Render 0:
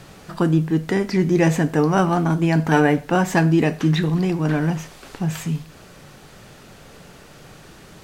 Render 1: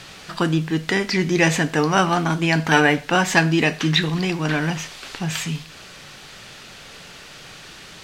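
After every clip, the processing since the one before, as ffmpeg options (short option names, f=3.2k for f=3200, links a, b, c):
-af "equalizer=f=3.5k:w=0.38:g=14,volume=-3.5dB"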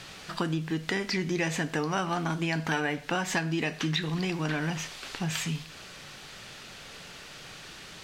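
-af "acompressor=threshold=-22dB:ratio=4,volume=-4.5dB"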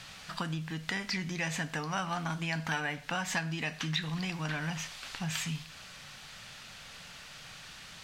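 -af "equalizer=f=370:w=1.6:g=-12.5,volume=-2.5dB"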